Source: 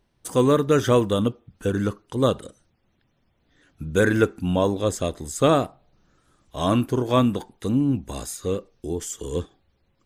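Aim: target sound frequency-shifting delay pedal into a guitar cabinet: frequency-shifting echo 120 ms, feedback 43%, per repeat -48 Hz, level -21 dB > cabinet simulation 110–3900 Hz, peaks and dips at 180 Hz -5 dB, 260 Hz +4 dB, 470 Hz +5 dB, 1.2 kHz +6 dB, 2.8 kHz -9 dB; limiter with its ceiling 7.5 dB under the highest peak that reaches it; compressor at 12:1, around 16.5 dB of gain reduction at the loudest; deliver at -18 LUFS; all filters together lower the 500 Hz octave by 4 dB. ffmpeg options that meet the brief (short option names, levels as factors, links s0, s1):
-filter_complex "[0:a]equalizer=f=500:t=o:g=-8.5,acompressor=threshold=0.02:ratio=12,alimiter=level_in=2.11:limit=0.0631:level=0:latency=1,volume=0.473,asplit=4[s0][s1][s2][s3];[s1]adelay=120,afreqshift=-48,volume=0.0891[s4];[s2]adelay=240,afreqshift=-96,volume=0.0385[s5];[s3]adelay=360,afreqshift=-144,volume=0.0164[s6];[s0][s4][s5][s6]amix=inputs=4:normalize=0,highpass=110,equalizer=f=180:t=q:w=4:g=-5,equalizer=f=260:t=q:w=4:g=4,equalizer=f=470:t=q:w=4:g=5,equalizer=f=1200:t=q:w=4:g=6,equalizer=f=2800:t=q:w=4:g=-9,lowpass=f=3900:w=0.5412,lowpass=f=3900:w=1.3066,volume=14.1"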